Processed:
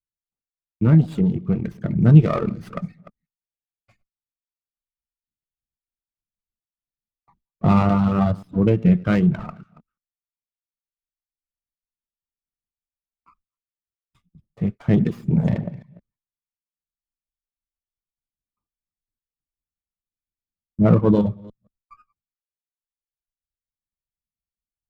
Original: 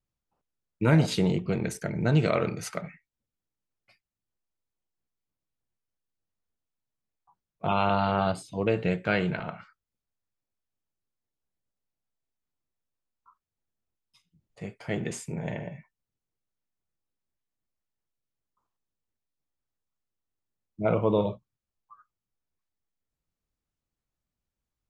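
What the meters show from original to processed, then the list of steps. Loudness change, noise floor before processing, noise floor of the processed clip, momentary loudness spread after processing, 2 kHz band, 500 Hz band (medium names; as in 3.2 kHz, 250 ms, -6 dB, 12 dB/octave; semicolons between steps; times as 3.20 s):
+8.5 dB, under -85 dBFS, under -85 dBFS, 17 LU, -2.5 dB, +2.5 dB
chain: chunks repeated in reverse 172 ms, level -13 dB; gate with hold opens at -56 dBFS; RIAA curve playback; reverb removal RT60 1.6 s; peaking EQ 250 Hz -4 dB 0.3 oct; gain riding 2 s; small resonant body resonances 230/1200/3400 Hz, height 10 dB, ringing for 25 ms; sliding maximum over 5 samples; trim -2 dB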